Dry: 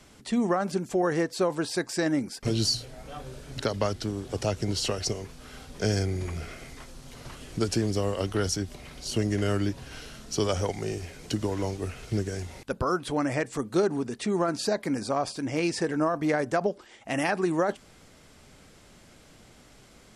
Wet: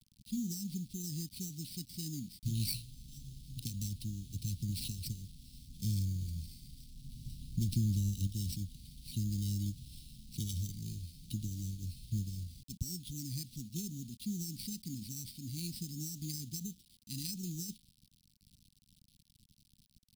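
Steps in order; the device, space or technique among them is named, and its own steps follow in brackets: low-pass opened by the level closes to 2200 Hz, open at -23.5 dBFS; early 8-bit sampler (sample-rate reducer 6800 Hz, jitter 0%; bit-crush 8-bit); inverse Chebyshev band-stop 580–1400 Hz, stop band 70 dB; 7.02–8.27 low shelf 380 Hz +5.5 dB; gain -5 dB

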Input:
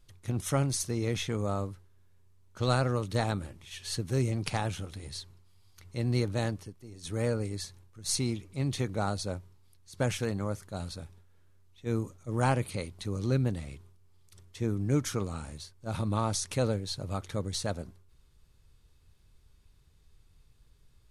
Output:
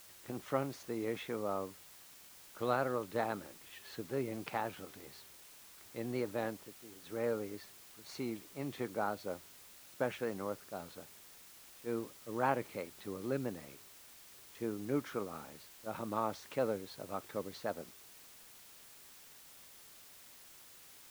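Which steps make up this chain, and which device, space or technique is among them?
wax cylinder (BPF 300–2000 Hz; wow and flutter; white noise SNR 16 dB); gain -2.5 dB

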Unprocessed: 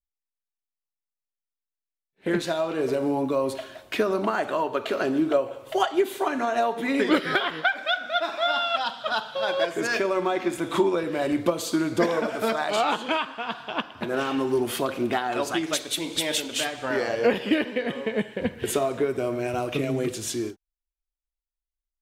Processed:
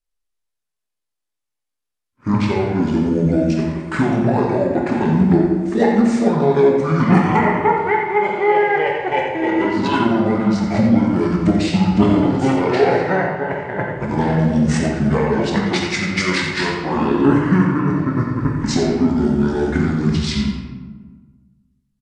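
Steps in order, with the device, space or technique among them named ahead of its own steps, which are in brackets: monster voice (pitch shift -9 st; low shelf 120 Hz +4 dB; echo 86 ms -9.5 dB; reverb RT60 1.4 s, pre-delay 13 ms, DRR 0 dB); gain +4.5 dB

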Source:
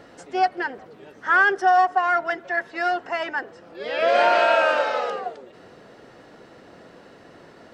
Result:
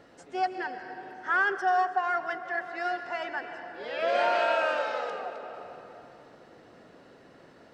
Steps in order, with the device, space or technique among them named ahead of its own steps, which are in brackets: compressed reverb return (on a send at -5 dB: reverb RT60 2.9 s, pre-delay 0.113 s + compressor, threshold -23 dBFS, peak gain reduction 10 dB); on the sum: gain -8 dB

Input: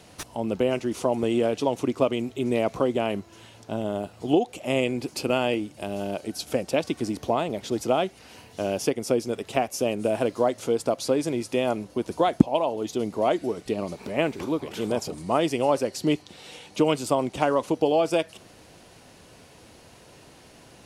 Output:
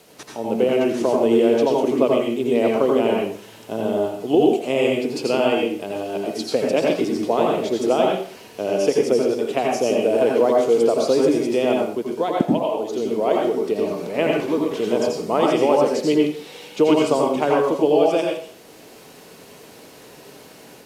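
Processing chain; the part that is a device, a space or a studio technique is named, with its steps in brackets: filmed off a television (BPF 160–7800 Hz; bell 440 Hz +7 dB 0.47 oct; reverb RT60 0.50 s, pre-delay 78 ms, DRR -1.5 dB; white noise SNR 32 dB; AGC gain up to 4.5 dB; gain -2.5 dB; AAC 96 kbps 32000 Hz)

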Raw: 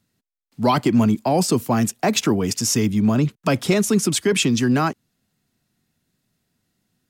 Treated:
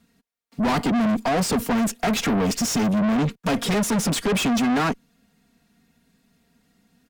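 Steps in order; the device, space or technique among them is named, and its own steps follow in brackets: comb 4.3 ms, depth 90%; tube preamp driven hard (tube stage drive 27 dB, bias 0.3; high shelf 3800 Hz -7 dB); gain +8 dB

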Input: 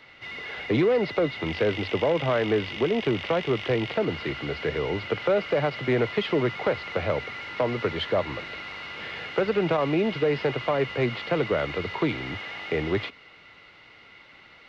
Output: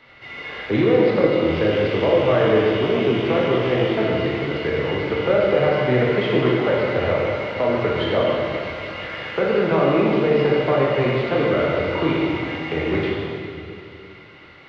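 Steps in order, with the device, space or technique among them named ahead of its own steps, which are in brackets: swimming-pool hall (reverb RT60 2.6 s, pre-delay 17 ms, DRR -4.5 dB; high shelf 4000 Hz -7.5 dB); gain +1 dB

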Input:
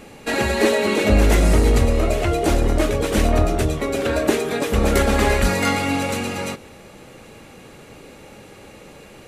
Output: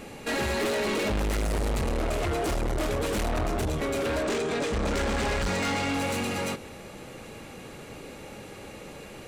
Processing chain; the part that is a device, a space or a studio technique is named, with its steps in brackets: 4.23–5.94 steep low-pass 8600 Hz; saturation between pre-emphasis and de-emphasis (high shelf 8800 Hz +9.5 dB; soft clip -25 dBFS, distortion -5 dB; high shelf 8800 Hz -9.5 dB)

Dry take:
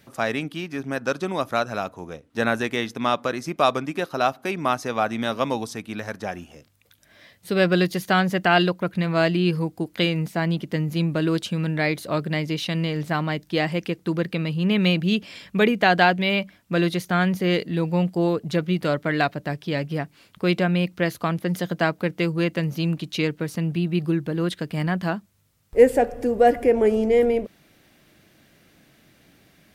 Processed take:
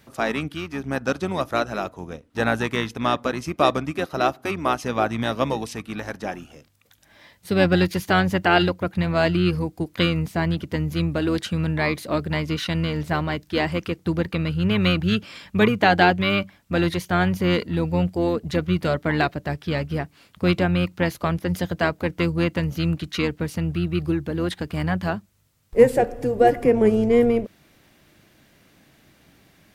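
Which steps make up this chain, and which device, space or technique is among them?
octave pedal (harmoniser -12 st -8 dB)

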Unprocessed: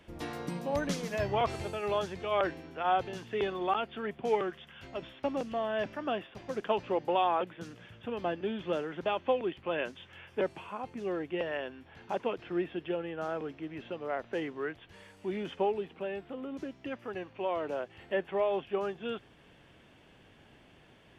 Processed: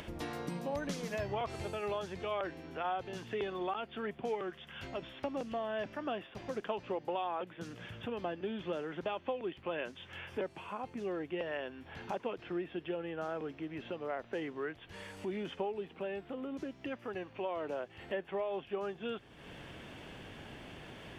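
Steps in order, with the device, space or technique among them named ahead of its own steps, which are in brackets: upward and downward compression (upward compressor, threshold -36 dBFS; compressor 4:1, threshold -32 dBFS, peak gain reduction 8.5 dB); gain -1.5 dB

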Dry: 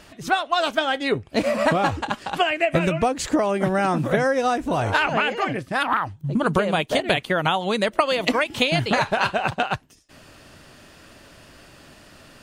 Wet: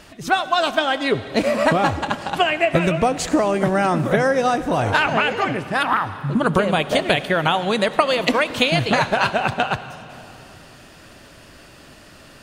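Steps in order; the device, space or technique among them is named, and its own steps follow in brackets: saturated reverb return (on a send at -11.5 dB: reverb RT60 2.6 s, pre-delay 65 ms + soft clip -16.5 dBFS, distortion -16 dB); on the sum: gain +2.5 dB

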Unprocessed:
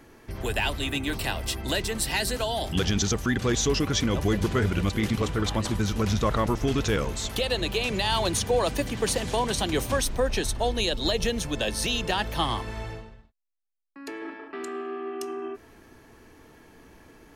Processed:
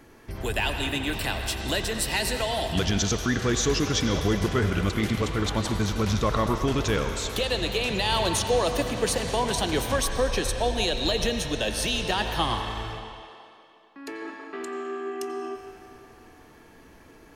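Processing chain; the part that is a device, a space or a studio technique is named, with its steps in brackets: filtered reverb send (on a send: HPF 490 Hz + LPF 5900 Hz 12 dB/oct + reverb RT60 2.8 s, pre-delay 80 ms, DRR 5 dB)

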